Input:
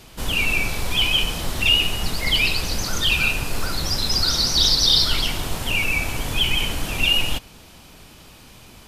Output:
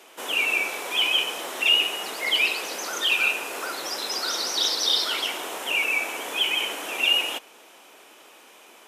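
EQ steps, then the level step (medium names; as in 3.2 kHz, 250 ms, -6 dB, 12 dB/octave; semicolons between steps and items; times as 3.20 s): high-pass 360 Hz 24 dB/octave; peaking EQ 4.5 kHz -9.5 dB 0.5 oct; treble shelf 8.4 kHz -5.5 dB; 0.0 dB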